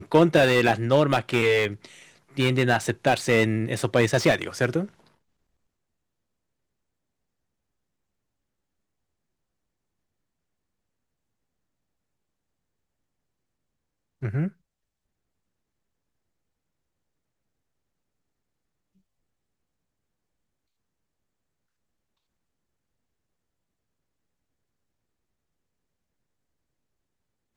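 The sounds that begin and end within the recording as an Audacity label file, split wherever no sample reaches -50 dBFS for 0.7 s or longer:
14.220000	14.520000	sound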